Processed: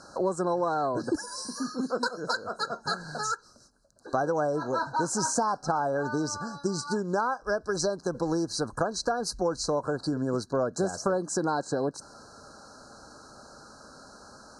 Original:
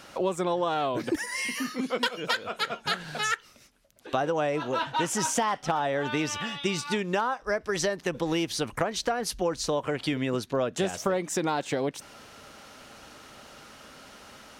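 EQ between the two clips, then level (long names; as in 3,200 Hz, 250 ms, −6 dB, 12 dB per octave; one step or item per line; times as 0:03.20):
linear-phase brick-wall band-stop 1,700–3,900 Hz
Butterworth low-pass 9,700 Hz 36 dB per octave
0.0 dB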